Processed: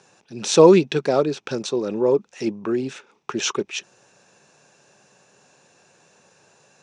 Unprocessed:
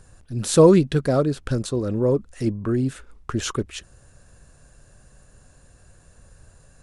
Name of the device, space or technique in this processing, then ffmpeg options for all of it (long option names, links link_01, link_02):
television speaker: -af "highpass=frequency=180:width=0.5412,highpass=frequency=180:width=1.3066,equalizer=frequency=260:width_type=q:width=4:gain=-5,equalizer=frequency=400:width_type=q:width=4:gain=5,equalizer=frequency=860:width_type=q:width=4:gain=9,equalizer=frequency=2500:width_type=q:width=4:gain=10,equalizer=frequency=3600:width_type=q:width=4:gain=5,equalizer=frequency=5800:width_type=q:width=4:gain=9,lowpass=frequency=7200:width=0.5412,lowpass=frequency=7200:width=1.3066"